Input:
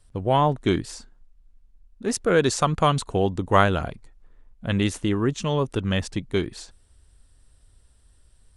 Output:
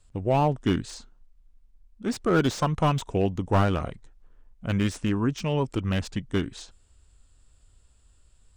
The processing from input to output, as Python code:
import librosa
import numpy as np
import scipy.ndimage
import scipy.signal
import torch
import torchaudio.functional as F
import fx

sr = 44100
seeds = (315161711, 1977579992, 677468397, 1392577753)

y = fx.formant_shift(x, sr, semitones=-2)
y = fx.slew_limit(y, sr, full_power_hz=130.0)
y = F.gain(torch.from_numpy(y), -2.0).numpy()